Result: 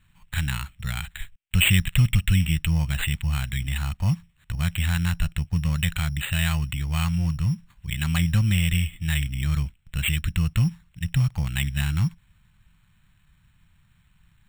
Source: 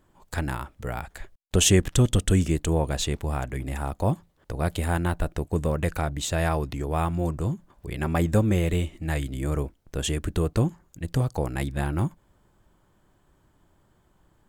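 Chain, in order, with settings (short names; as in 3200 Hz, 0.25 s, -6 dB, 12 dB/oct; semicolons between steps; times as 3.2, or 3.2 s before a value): EQ curve 170 Hz 0 dB, 410 Hz -29 dB, 2600 Hz +9 dB, 7100 Hz -28 dB; in parallel at -3 dB: limiter -20 dBFS, peak gain reduction 13 dB; on the sum: careless resampling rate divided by 8×, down none, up hold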